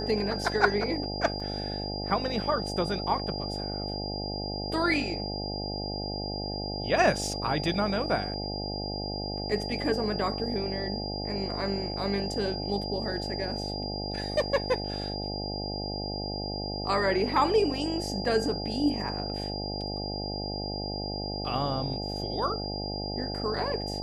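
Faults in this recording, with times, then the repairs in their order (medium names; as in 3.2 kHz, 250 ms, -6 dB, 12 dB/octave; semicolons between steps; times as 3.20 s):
buzz 50 Hz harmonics 17 -35 dBFS
whine 4.8 kHz -36 dBFS
1.40 s: dropout 4 ms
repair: band-stop 4.8 kHz, Q 30; de-hum 50 Hz, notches 17; interpolate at 1.40 s, 4 ms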